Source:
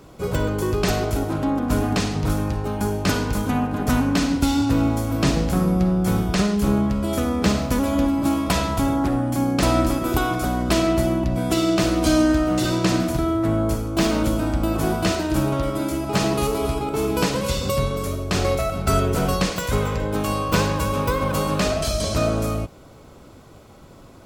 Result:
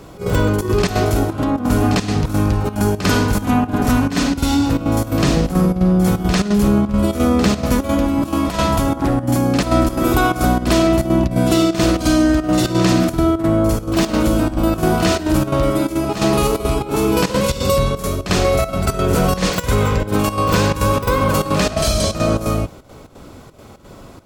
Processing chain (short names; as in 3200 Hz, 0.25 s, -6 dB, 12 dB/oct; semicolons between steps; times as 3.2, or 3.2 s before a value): in parallel at -0.5 dB: negative-ratio compressor -22 dBFS; on the sum: step gate "xx.xxxx." 173 bpm -12 dB; reverse echo 49 ms -9.5 dB